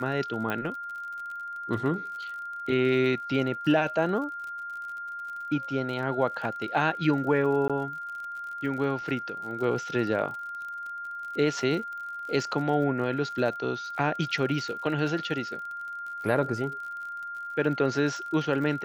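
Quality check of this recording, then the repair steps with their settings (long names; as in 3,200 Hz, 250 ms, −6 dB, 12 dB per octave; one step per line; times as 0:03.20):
surface crackle 48 per second −37 dBFS
whistle 1,400 Hz −34 dBFS
0:00.50: click −17 dBFS
0:07.68–0:07.70: drop-out 16 ms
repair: click removal
notch filter 1,400 Hz, Q 30
repair the gap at 0:07.68, 16 ms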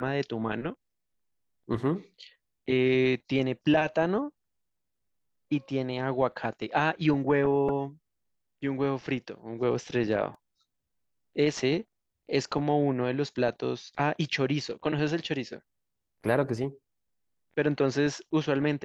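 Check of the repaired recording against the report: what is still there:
none of them is left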